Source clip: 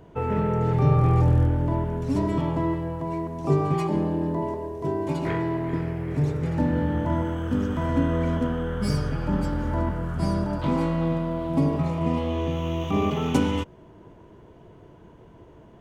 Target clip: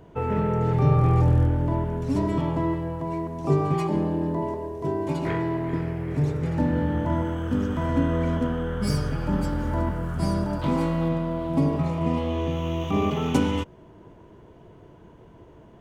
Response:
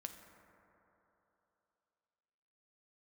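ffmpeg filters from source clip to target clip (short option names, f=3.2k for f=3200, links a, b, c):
-filter_complex "[0:a]asettb=1/sr,asplit=3[a][b][c];[a]atrim=end=8.874[d];[b]atrim=start=8.87:end=11.09,asetpts=PTS-STARTPTS,afade=t=in:d=0.004:c=qsin,afade=t=out:st=2.216:d=0.004:c=qsin,highshelf=f=8k:g=7[e];[c]atrim=start=11.086[f];[d][e]acrossfade=d=0.004:c1=hsin:c2=qsin[g];[g][f]acrossfade=d=0.004:c1=qsin:c2=hsin"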